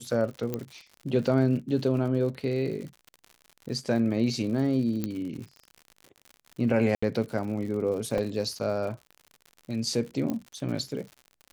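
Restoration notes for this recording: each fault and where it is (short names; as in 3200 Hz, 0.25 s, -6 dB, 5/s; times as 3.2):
crackle 86/s -37 dBFS
0.54 pop -16 dBFS
5.04 pop -16 dBFS
6.95–7.03 gap 75 ms
8.18 gap 2.5 ms
10.3 pop -18 dBFS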